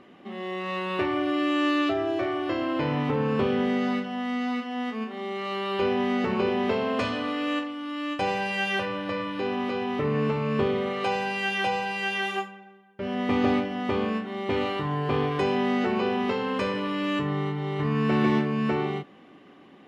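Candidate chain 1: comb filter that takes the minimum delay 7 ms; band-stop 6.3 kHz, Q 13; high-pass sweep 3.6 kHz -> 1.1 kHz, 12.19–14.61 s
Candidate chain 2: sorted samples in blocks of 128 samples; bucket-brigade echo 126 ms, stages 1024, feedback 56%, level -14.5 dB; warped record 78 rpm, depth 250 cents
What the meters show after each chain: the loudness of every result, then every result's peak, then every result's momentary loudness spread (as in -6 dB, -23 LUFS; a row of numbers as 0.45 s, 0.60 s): -31.5 LUFS, -26.5 LUFS; -16.0 dBFS, -8.5 dBFS; 12 LU, 7 LU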